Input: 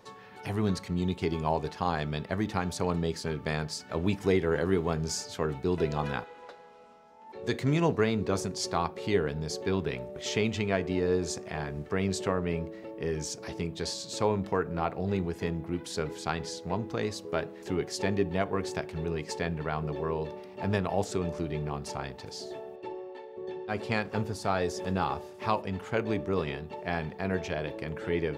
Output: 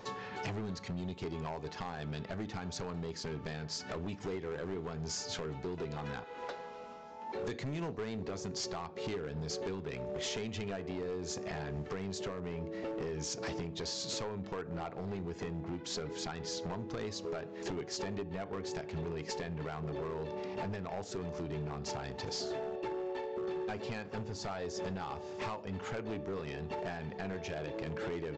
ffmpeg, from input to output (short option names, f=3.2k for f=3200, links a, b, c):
-af "acompressor=threshold=-39dB:ratio=16,aresample=16000,asoftclip=type=hard:threshold=-40dB,aresample=44100,volume=6.5dB"